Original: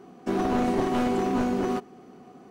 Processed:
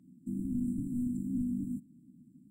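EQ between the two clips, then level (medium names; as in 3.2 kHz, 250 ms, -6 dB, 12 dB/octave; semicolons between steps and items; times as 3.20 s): brick-wall FIR band-stop 320–7200 Hz; peaking EQ 150 Hz +5 dB 1.1 oct; -8.0 dB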